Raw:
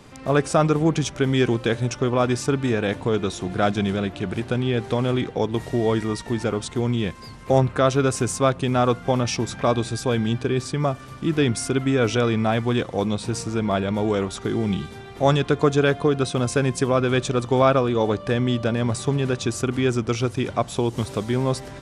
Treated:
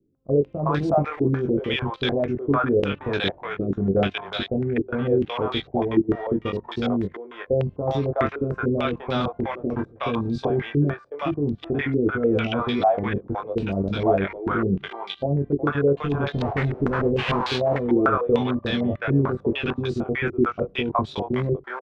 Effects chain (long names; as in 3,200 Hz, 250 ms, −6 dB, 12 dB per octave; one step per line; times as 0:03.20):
0:16.01–0:17.40: each half-wave held at its own peak
noise gate −25 dBFS, range −12 dB
output level in coarse steps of 24 dB
double-tracking delay 21 ms −4 dB
multiband delay without the direct sound lows, highs 370 ms, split 560 Hz
low-pass on a step sequencer 6.7 Hz 350–4,000 Hz